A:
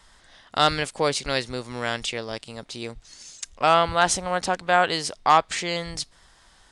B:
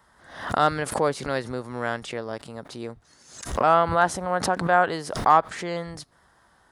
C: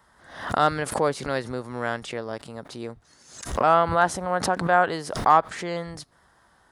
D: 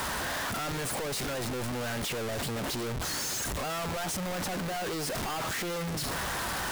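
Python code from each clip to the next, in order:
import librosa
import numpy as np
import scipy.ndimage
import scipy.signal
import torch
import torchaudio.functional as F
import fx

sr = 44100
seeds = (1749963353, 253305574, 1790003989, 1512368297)

y1 = scipy.signal.sosfilt(scipy.signal.butter(2, 83.0, 'highpass', fs=sr, output='sos'), x)
y1 = fx.band_shelf(y1, sr, hz=4400.0, db=-12.0, octaves=2.3)
y1 = fx.pre_swell(y1, sr, db_per_s=90.0)
y2 = y1
y3 = np.sign(y2) * np.sqrt(np.mean(np.square(y2)))
y3 = y3 * librosa.db_to_amplitude(-7.5)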